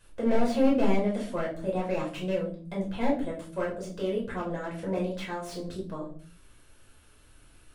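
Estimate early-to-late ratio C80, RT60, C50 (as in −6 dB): 13.5 dB, 0.45 s, 9.0 dB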